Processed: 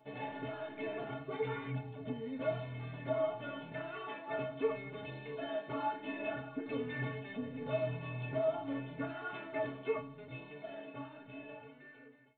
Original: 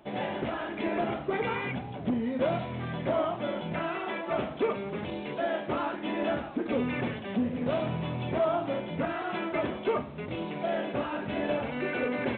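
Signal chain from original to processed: fade out at the end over 2.95 s; inharmonic resonator 130 Hz, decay 0.36 s, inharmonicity 0.03; trim +3.5 dB

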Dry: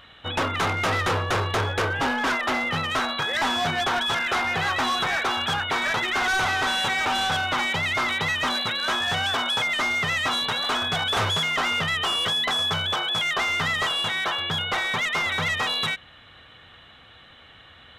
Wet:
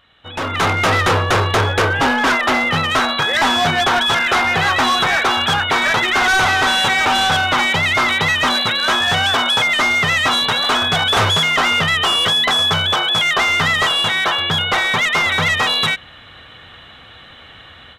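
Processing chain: level rider gain up to 15.5 dB; trim -6.5 dB

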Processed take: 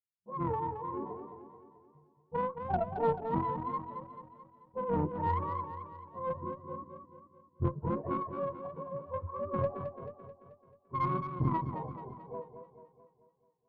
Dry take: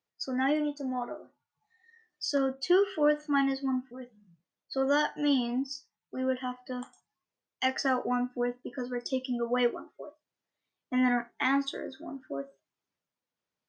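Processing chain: spectrum inverted on a logarithmic axis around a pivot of 520 Hz; gate with hold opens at -52 dBFS; level-controlled noise filter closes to 340 Hz, open at -23 dBFS; Chebyshev shaper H 2 -13 dB, 3 -26 dB, 6 -31 dB, 8 -31 dB, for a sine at -14.5 dBFS; modulated delay 218 ms, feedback 52%, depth 75 cents, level -8.5 dB; trim -3.5 dB

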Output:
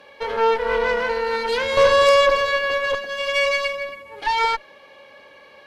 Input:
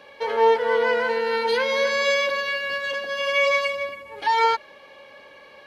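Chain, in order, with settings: saturation -10.5 dBFS, distortion -22 dB; 1.77–2.95 s: high-order bell 650 Hz +9 dB 2.6 oct; Chebyshev shaper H 6 -14 dB, 8 -30 dB, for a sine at -5 dBFS

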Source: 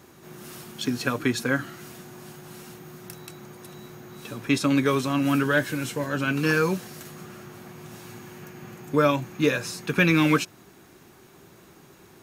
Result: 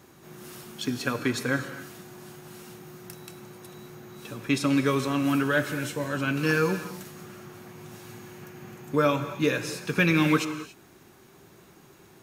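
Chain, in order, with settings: gated-style reverb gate 310 ms flat, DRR 9.5 dB; trim -2.5 dB

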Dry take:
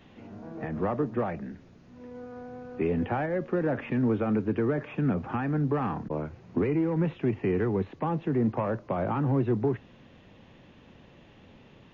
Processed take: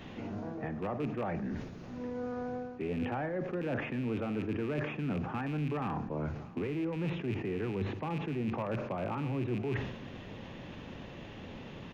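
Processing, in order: rattle on loud lows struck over -30 dBFS, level -30 dBFS; reverse; compression 5:1, threshold -42 dBFS, peak gain reduction 18 dB; reverse; delay 630 ms -23 dB; reverberation RT60 0.75 s, pre-delay 40 ms, DRR 13.5 dB; decay stretcher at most 61 dB/s; trim +7.5 dB

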